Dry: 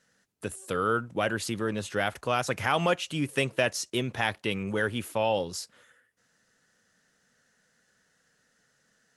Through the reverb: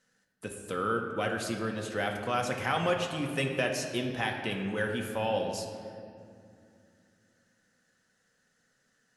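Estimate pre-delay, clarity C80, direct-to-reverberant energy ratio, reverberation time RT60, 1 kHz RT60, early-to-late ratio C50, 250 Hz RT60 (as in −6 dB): 4 ms, 6.5 dB, 2.0 dB, 2.4 s, 2.2 s, 5.0 dB, 3.6 s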